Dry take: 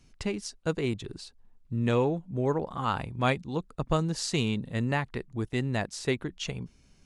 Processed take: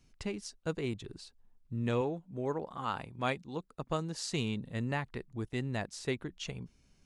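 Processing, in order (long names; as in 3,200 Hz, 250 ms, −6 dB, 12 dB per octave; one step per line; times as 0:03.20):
0:02.01–0:04.29: low-shelf EQ 110 Hz −11 dB
level −6 dB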